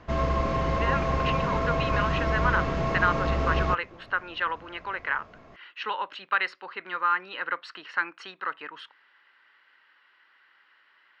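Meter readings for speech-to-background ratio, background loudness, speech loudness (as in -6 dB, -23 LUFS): -3.5 dB, -27.0 LUFS, -30.5 LUFS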